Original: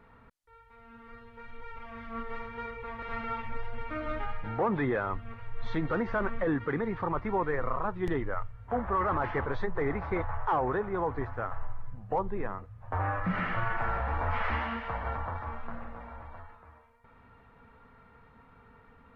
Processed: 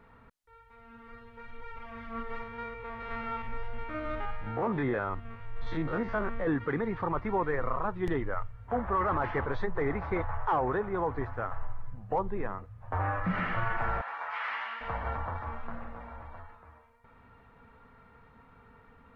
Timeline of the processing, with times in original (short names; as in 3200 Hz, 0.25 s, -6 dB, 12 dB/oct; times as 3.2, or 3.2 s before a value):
2.43–6.47 stepped spectrum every 50 ms
14.01–14.81 HPF 1100 Hz